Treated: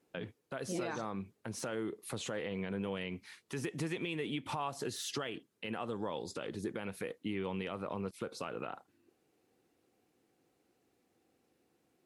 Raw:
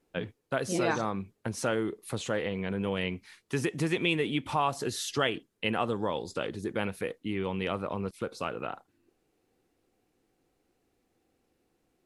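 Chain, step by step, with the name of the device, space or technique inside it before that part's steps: podcast mastering chain (HPF 100 Hz; de-esser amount 80%; compressor 3:1, threshold -34 dBFS, peak gain reduction 9.5 dB; limiter -26.5 dBFS, peak gain reduction 7 dB; MP3 96 kbps 48000 Hz)

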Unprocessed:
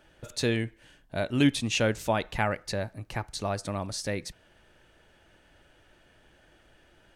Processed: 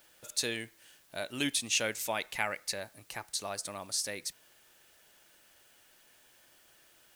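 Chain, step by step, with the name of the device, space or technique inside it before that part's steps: turntable without a phono preamp (RIAA curve recording; white noise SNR 26 dB); 1.84–2.79 bell 2200 Hz +6 dB 0.34 oct; gain -6.5 dB

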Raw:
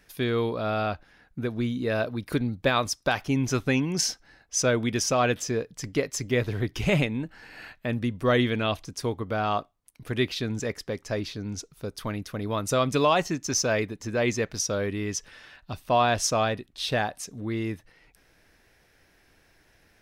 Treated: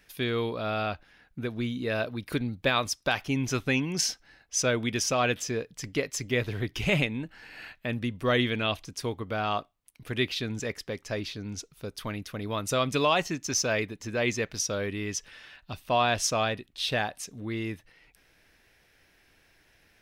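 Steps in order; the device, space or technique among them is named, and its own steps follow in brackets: presence and air boost (bell 2800 Hz +5.5 dB 1.3 oct; high shelf 11000 Hz +4.5 dB); gain -3.5 dB

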